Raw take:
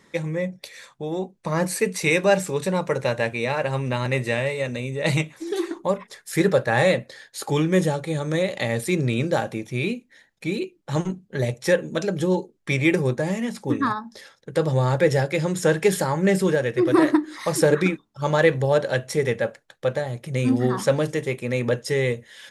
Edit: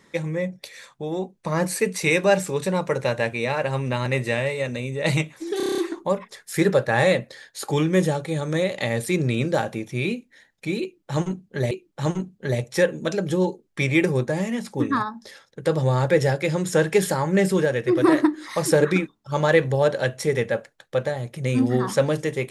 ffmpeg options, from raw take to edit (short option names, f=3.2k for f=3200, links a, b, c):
-filter_complex "[0:a]asplit=9[a][b][c][d][e][f][g][h][i];[a]atrim=end=5.602[j];[b]atrim=start=5.568:end=5.602[k];[c]atrim=start=5.568:end=5.602[l];[d]atrim=start=5.568:end=5.602[m];[e]atrim=start=5.568:end=5.602[n];[f]atrim=start=5.568:end=5.602[o];[g]atrim=start=5.568:end=5.602[p];[h]atrim=start=5.568:end=11.502[q];[i]atrim=start=10.608[r];[j][k]acrossfade=d=0.004:c1=hsin:c2=hsin[s];[s][l]acrossfade=d=0.004:c1=hsin:c2=hsin[t];[t][m]acrossfade=d=0.004:c1=hsin:c2=hsin[u];[u][n]acrossfade=d=0.004:c1=hsin:c2=hsin[v];[v][o]acrossfade=d=0.004:c1=hsin:c2=hsin[w];[w][p]acrossfade=d=0.004:c1=hsin:c2=hsin[x];[x][q]acrossfade=d=0.004:c1=hsin:c2=hsin[y];[y][r]acrossfade=d=0.004:c1=hsin:c2=hsin"